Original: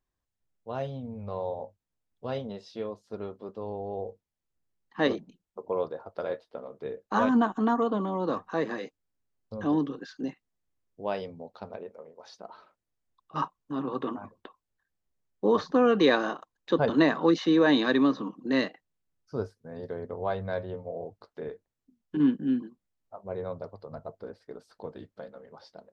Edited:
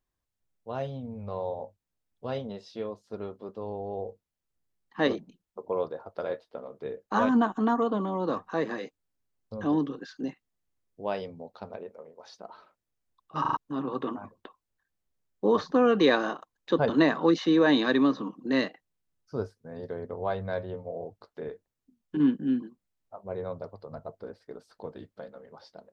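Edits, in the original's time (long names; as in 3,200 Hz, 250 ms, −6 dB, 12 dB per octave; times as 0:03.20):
0:13.41: stutter in place 0.04 s, 4 plays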